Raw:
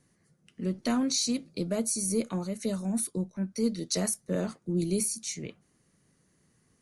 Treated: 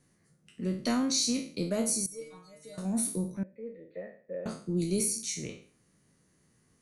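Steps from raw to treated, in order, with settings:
peak hold with a decay on every bin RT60 0.45 s
0:02.06–0:02.78: stiff-string resonator 150 Hz, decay 0.49 s, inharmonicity 0.002
0:03.43–0:04.46: formant resonators in series e
level −1.5 dB

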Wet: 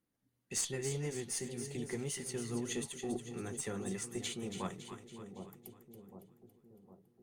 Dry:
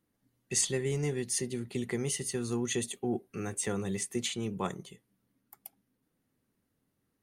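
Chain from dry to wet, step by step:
0:02.00–0:02.62: slack as between gear wheels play −54.5 dBFS
flanger 1.8 Hz, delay 3.4 ms, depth 7.4 ms, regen −61%
harmonic generator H 2 −17 dB, 6 −35 dB, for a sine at −19 dBFS
echo with a time of its own for lows and highs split 830 Hz, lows 759 ms, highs 279 ms, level −8.5 dB
level −2.5 dB

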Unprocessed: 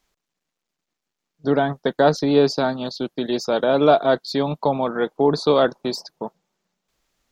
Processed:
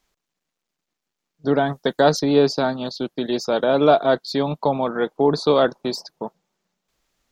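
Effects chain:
0:01.66–0:02.20: high-shelf EQ 5,000 Hz +11 dB

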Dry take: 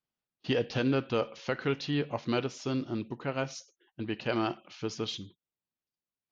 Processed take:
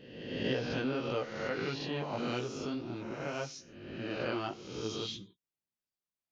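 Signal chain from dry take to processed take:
peak hold with a rise ahead of every peak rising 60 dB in 1.23 s
chorus effect 1.7 Hz, delay 15.5 ms, depth 4.4 ms
level −4 dB

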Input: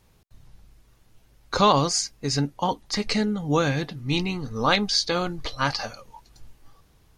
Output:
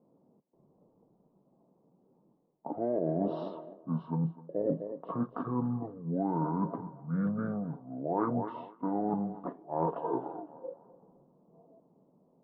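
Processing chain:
elliptic band-pass filter 280–1,800 Hz, stop band 40 dB
feedback echo with a high-pass in the loop 147 ms, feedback 42%, high-pass 360 Hz, level −18 dB
reversed playback
downward compressor 8 to 1, threshold −32 dBFS, peak gain reduction 17.5 dB
reversed playback
low-pass that shuts in the quiet parts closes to 990 Hz, open at −33.5 dBFS
wrong playback speed 78 rpm record played at 45 rpm
level +4 dB

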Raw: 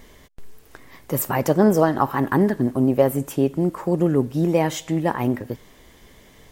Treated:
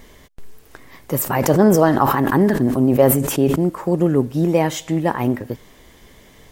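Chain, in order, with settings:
0:01.22–0:03.56: level that may fall only so fast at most 46 dB per second
level +2.5 dB

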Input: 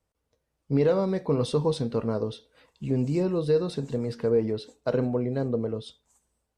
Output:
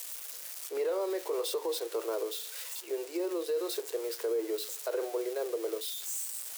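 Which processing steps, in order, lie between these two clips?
spike at every zero crossing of −28.5 dBFS
Chebyshev high-pass filter 330 Hz, order 8
brickwall limiter −23.5 dBFS, peak gain reduction 8.5 dB
level −1 dB

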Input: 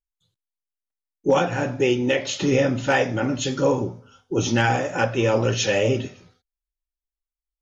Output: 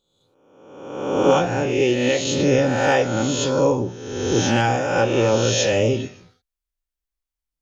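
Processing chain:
peak hold with a rise ahead of every peak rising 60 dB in 1.15 s
dynamic equaliser 1,800 Hz, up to −5 dB, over −35 dBFS, Q 1.3

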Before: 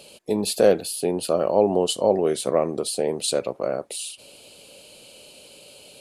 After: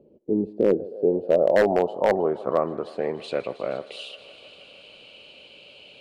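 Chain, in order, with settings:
feedback echo with a high-pass in the loop 157 ms, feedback 85%, high-pass 250 Hz, level −19 dB
low-pass filter sweep 340 Hz → 2,800 Hz, 0:00.61–0:03.69
wave folding −6 dBFS
level −3.5 dB

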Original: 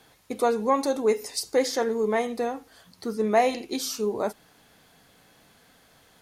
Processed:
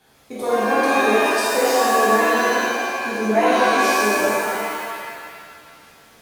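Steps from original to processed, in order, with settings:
reverb with rising layers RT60 2 s, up +7 semitones, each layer −2 dB, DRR −9 dB
level −5 dB

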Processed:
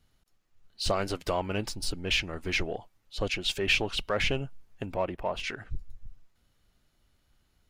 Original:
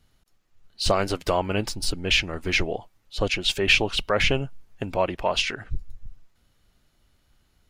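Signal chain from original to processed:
0:04.85–0:05.43: parametric band 5,200 Hz −4 dB → −15 dB 2.3 octaves
in parallel at −8.5 dB: soft clipping −24 dBFS, distortion −7 dB
on the sum: level −7.5 dB

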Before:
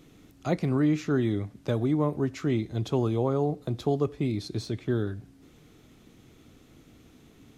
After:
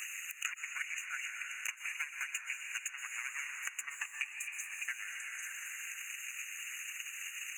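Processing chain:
lower of the sound and its delayed copy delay 0.7 ms
Butterworth high-pass 2,000 Hz 36 dB per octave
high-shelf EQ 2,600 Hz −9.5 dB
harmonic and percussive parts rebalanced harmonic −15 dB
parametric band 6,200 Hz +8.5 dB 0.52 octaves
downward compressor 6 to 1, threshold −57 dBFS, peak gain reduction 12.5 dB
transient designer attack +11 dB, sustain −8 dB
linear-phase brick-wall band-stop 2,900–6,200 Hz
echo through a band-pass that steps 264 ms, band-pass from 2,700 Hz, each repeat 0.7 octaves, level −11.5 dB
dense smooth reverb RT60 2.4 s, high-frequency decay 0.8×, pre-delay 105 ms, DRR 6 dB
multiband upward and downward compressor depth 100%
level +17 dB

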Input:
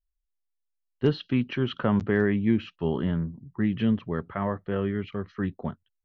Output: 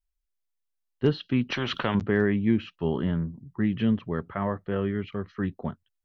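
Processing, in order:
0:01.50–0:01.95: every bin compressed towards the loudest bin 2 to 1

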